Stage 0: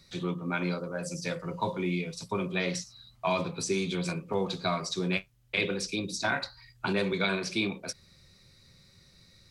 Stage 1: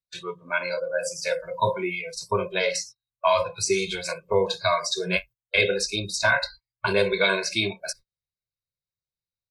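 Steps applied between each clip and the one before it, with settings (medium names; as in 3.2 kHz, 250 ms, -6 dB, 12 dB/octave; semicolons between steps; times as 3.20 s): gate -46 dBFS, range -28 dB; spectral noise reduction 20 dB; comb 1.9 ms, depth 87%; trim +5.5 dB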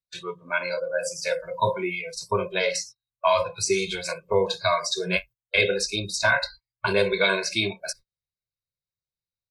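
no audible change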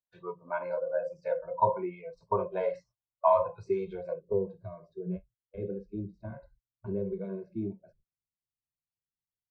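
low-pass sweep 860 Hz -> 270 Hz, 3.81–4.48 s; trim -7 dB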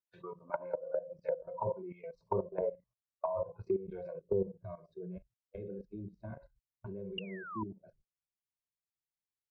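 painted sound fall, 7.18–7.63 s, 940–2900 Hz -22 dBFS; level held to a coarse grid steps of 15 dB; low-pass that closes with the level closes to 490 Hz, closed at -32.5 dBFS; trim +2.5 dB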